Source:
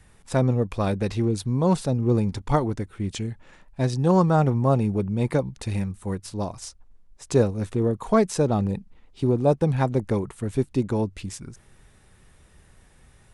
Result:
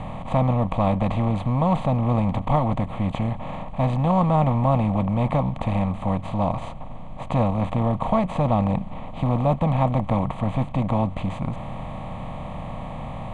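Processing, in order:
compressor on every frequency bin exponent 0.4
low-pass filter 5,200 Hz 12 dB per octave
high-shelf EQ 3,400 Hz −10.5 dB
phaser with its sweep stopped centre 1,500 Hz, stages 6

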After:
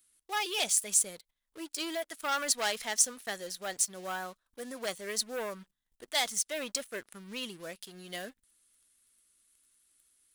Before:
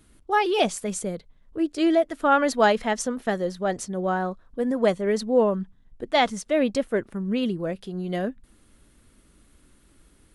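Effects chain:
leveller curve on the samples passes 2
first-order pre-emphasis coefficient 0.97

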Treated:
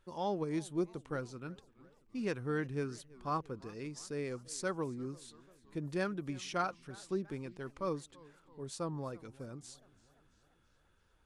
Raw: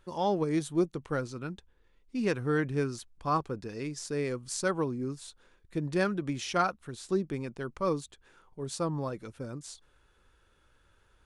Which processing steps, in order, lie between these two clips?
feedback echo with a swinging delay time 340 ms, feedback 59%, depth 170 cents, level −22.5 dB
level −7 dB

